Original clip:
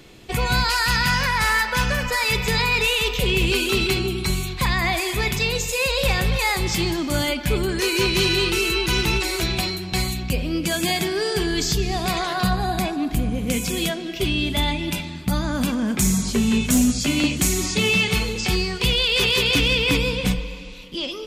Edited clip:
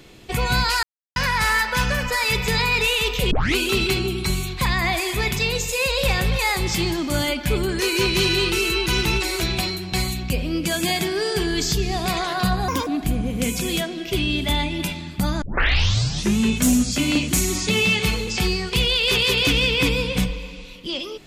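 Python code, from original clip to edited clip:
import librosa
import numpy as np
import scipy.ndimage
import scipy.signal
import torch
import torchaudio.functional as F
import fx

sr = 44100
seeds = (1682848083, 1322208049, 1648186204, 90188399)

y = fx.edit(x, sr, fx.silence(start_s=0.83, length_s=0.33),
    fx.tape_start(start_s=3.31, length_s=0.25),
    fx.speed_span(start_s=12.68, length_s=0.27, speed=1.44),
    fx.tape_start(start_s=15.5, length_s=0.96), tone=tone)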